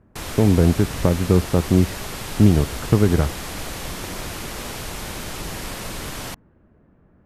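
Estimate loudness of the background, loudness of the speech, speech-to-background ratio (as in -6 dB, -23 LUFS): -31.0 LUFS, -19.0 LUFS, 12.0 dB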